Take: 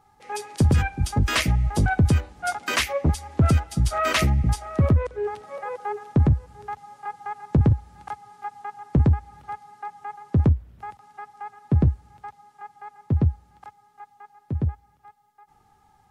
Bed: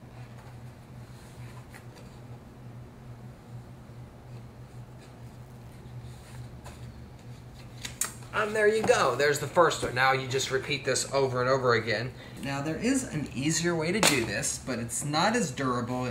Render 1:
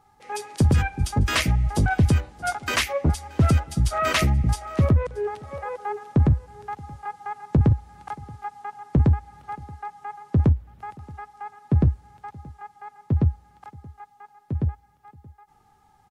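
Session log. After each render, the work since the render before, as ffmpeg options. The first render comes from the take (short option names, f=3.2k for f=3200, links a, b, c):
-af "aecho=1:1:627:0.0708"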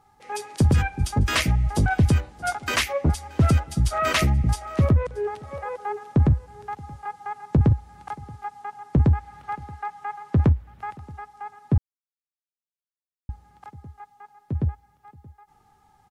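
-filter_complex "[0:a]asettb=1/sr,asplit=3[a][b][c];[a]atrim=end=9.154[d];[b]atrim=start=9.15:end=11,asetpts=PTS-STARTPTS,afade=t=in:d=0.004:c=qsin,afade=t=out:st=1.846:d=0.004:c=qsin,equalizer=f=1.8k:w=0.54:g=5.5[e];[c]atrim=start=10.996[f];[d][e]acrossfade=d=0.004:c1=hsin:c2=qsin[g];[g][f]acrossfade=d=0.004:c1=qsin:c2=hsin,asplit=3[h][i][j];[h]atrim=end=11.78,asetpts=PTS-STARTPTS,afade=t=out:st=11.776:d=0.004:c=hsin[k];[i]atrim=start=11.78:end=13.29,asetpts=PTS-STARTPTS,volume=0[l];[j]atrim=start=13.29,asetpts=PTS-STARTPTS,afade=t=in:d=0.004:c=hsin[m];[k][l][m]concat=n=3:v=0:a=1"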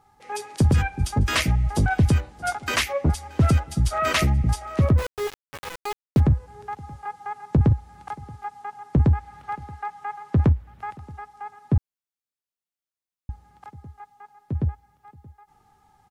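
-filter_complex "[0:a]asplit=3[a][b][c];[a]afade=t=out:st=4.97:d=0.02[d];[b]aeval=exprs='val(0)*gte(abs(val(0)),0.0473)':c=same,afade=t=in:st=4.97:d=0.02,afade=t=out:st=6.19:d=0.02[e];[c]afade=t=in:st=6.19:d=0.02[f];[d][e][f]amix=inputs=3:normalize=0"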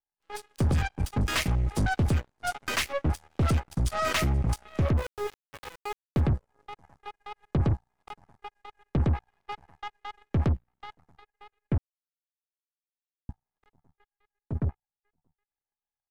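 -af "asoftclip=type=tanh:threshold=-23.5dB,aeval=exprs='0.0668*(cos(1*acos(clip(val(0)/0.0668,-1,1)))-cos(1*PI/2))+0.00944*(cos(2*acos(clip(val(0)/0.0668,-1,1)))-cos(2*PI/2))+0.0266*(cos(3*acos(clip(val(0)/0.0668,-1,1)))-cos(3*PI/2))+0.00266*(cos(5*acos(clip(val(0)/0.0668,-1,1)))-cos(5*PI/2))':c=same"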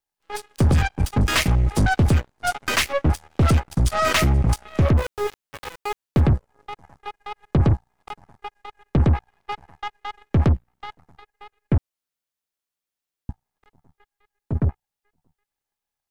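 -af "volume=7.5dB"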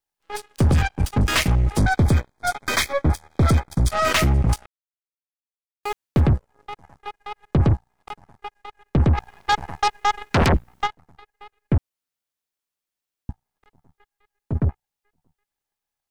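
-filter_complex "[0:a]asettb=1/sr,asplit=3[a][b][c];[a]atrim=end=1.784[d];[b]atrim=start=1.78:end=3.91,asetpts=PTS-STARTPTS,afade=t=in:d=0.004:c=qsin,afade=t=out:st=2.126:d=0.004:c=qsin,asuperstop=centerf=2800:order=20:qfactor=5[e];[c]atrim=start=3.906[f];[d][e]acrossfade=d=0.004:c1=hsin:c2=qsin[g];[g][f]acrossfade=d=0.004:c1=qsin:c2=hsin,asplit=3[h][i][j];[h]afade=t=out:st=9.17:d=0.02[k];[i]aeval=exprs='0.282*sin(PI/2*3.98*val(0)/0.282)':c=same,afade=t=in:st=9.17:d=0.02,afade=t=out:st=10.86:d=0.02[l];[j]afade=t=in:st=10.86:d=0.02[m];[k][l][m]amix=inputs=3:normalize=0,asplit=3[n][o][p];[n]atrim=end=4.66,asetpts=PTS-STARTPTS,afade=t=out:st=4.656:d=0.004:c=hsin[q];[o]atrim=start=4.66:end=5.83,asetpts=PTS-STARTPTS,volume=0[r];[p]atrim=start=5.83,asetpts=PTS-STARTPTS,afade=t=in:d=0.004:c=hsin[s];[q][r][s]concat=n=3:v=0:a=1"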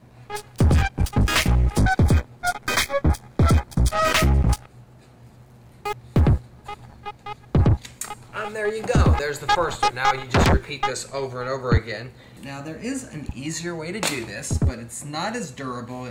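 -filter_complex "[1:a]volume=-2dB[a];[0:a][a]amix=inputs=2:normalize=0"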